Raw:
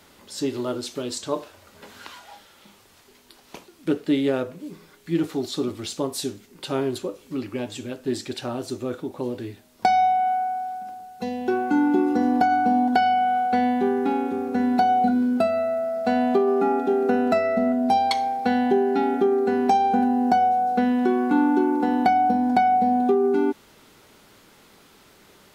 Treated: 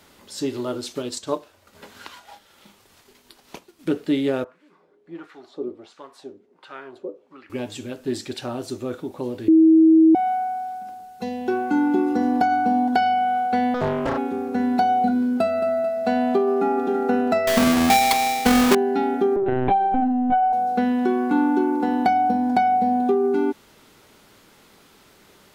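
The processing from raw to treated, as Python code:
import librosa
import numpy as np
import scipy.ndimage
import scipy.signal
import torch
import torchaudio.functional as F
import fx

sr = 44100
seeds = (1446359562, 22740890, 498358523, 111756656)

y = fx.transient(x, sr, attack_db=2, sustain_db=-7, at=(0.92, 3.89))
y = fx.wah_lfo(y, sr, hz=1.4, low_hz=400.0, high_hz=1700.0, q=2.2, at=(4.44, 7.5))
y = fx.doppler_dist(y, sr, depth_ms=0.97, at=(13.74, 14.18))
y = fx.echo_throw(y, sr, start_s=15.22, length_s=0.44, ms=220, feedback_pct=55, wet_db=-11.0)
y = fx.echo_throw(y, sr, start_s=16.44, length_s=0.43, ms=330, feedback_pct=25, wet_db=-7.0)
y = fx.halfwave_hold(y, sr, at=(17.47, 18.75))
y = fx.lpc_vocoder(y, sr, seeds[0], excitation='pitch_kept', order=16, at=(19.36, 20.53))
y = fx.edit(y, sr, fx.bleep(start_s=9.48, length_s=0.67, hz=321.0, db=-9.5), tone=tone)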